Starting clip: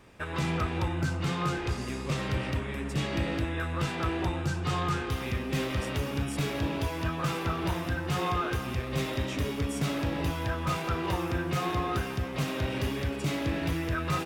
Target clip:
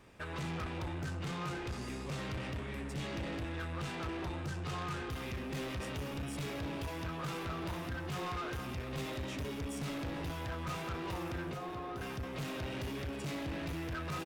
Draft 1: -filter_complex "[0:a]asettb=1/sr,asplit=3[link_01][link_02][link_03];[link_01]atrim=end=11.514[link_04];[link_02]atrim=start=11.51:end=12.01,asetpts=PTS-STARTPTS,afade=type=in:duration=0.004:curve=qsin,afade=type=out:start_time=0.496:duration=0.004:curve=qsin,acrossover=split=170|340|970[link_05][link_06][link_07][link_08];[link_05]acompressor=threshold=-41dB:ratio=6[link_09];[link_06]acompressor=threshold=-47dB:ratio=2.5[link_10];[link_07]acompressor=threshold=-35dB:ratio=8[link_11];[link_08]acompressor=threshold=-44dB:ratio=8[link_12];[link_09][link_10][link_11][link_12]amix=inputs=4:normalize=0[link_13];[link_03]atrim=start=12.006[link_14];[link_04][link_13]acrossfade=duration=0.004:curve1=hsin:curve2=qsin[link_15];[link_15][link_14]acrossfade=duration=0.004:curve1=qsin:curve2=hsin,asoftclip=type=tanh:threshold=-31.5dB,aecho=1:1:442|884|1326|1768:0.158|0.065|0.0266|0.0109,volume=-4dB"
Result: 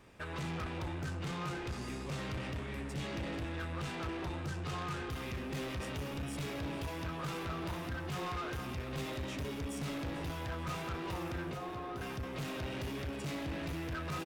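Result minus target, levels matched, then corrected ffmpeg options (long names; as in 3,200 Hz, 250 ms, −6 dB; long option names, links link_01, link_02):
echo-to-direct +7 dB
-filter_complex "[0:a]asettb=1/sr,asplit=3[link_01][link_02][link_03];[link_01]atrim=end=11.514[link_04];[link_02]atrim=start=11.51:end=12.01,asetpts=PTS-STARTPTS,afade=type=in:duration=0.004:curve=qsin,afade=type=out:start_time=0.496:duration=0.004:curve=qsin,acrossover=split=170|340|970[link_05][link_06][link_07][link_08];[link_05]acompressor=threshold=-41dB:ratio=6[link_09];[link_06]acompressor=threshold=-47dB:ratio=2.5[link_10];[link_07]acompressor=threshold=-35dB:ratio=8[link_11];[link_08]acompressor=threshold=-44dB:ratio=8[link_12];[link_09][link_10][link_11][link_12]amix=inputs=4:normalize=0[link_13];[link_03]atrim=start=12.006[link_14];[link_04][link_13]acrossfade=duration=0.004:curve1=hsin:curve2=qsin[link_15];[link_15][link_14]acrossfade=duration=0.004:curve1=qsin:curve2=hsin,asoftclip=type=tanh:threshold=-31.5dB,aecho=1:1:442|884|1326:0.0708|0.029|0.0119,volume=-4dB"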